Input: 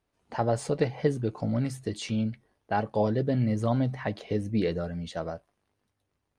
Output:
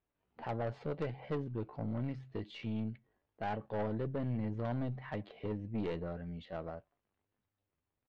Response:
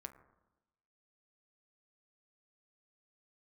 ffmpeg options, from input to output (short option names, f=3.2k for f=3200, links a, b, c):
-af "lowpass=f=3.4k:w=0.5412,lowpass=f=3.4k:w=1.3066,atempo=0.79,aeval=exprs='(tanh(15.8*val(0)+0.45)-tanh(0.45))/15.8':c=same,volume=-7dB"